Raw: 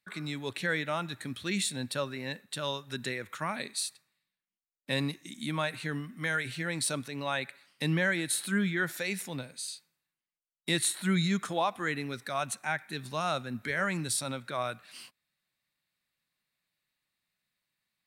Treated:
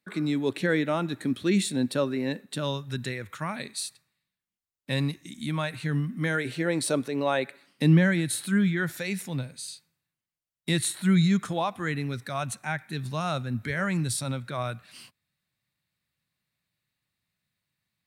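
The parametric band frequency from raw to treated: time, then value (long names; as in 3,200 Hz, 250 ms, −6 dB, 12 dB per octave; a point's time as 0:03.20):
parametric band +13 dB 2 octaves
0:02.49 300 Hz
0:03.06 76 Hz
0:05.76 76 Hz
0:06.51 410 Hz
0:07.43 410 Hz
0:08.46 98 Hz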